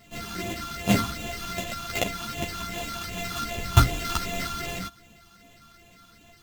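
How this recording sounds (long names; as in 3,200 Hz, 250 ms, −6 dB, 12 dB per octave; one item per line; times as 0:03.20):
a buzz of ramps at a fixed pitch in blocks of 64 samples
phaser sweep stages 6, 2.6 Hz, lowest notch 540–1,500 Hz
aliases and images of a low sample rate 10,000 Hz, jitter 0%
a shimmering, thickened sound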